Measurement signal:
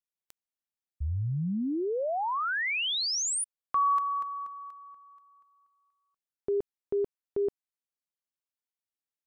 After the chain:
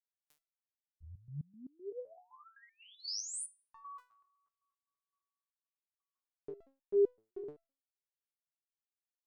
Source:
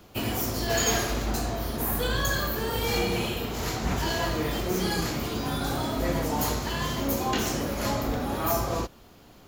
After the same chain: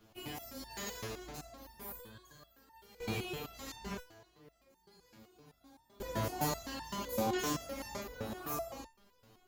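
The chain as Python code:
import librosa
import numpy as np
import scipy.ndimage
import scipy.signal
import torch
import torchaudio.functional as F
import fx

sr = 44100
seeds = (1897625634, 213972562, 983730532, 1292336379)

y = fx.tremolo_random(x, sr, seeds[0], hz=1.0, depth_pct=95)
y = fx.resonator_held(y, sr, hz=7.8, low_hz=110.0, high_hz=900.0)
y = F.gain(torch.from_numpy(y), 4.0).numpy()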